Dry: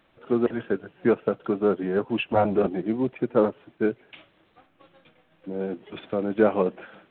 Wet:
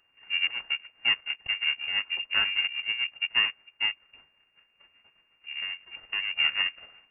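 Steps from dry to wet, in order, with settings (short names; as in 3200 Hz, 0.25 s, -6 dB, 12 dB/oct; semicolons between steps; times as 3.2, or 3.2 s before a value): trilling pitch shifter -5.5 st, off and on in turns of 0.234 s; full-wave rectifier; inverted band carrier 2800 Hz; gain -6 dB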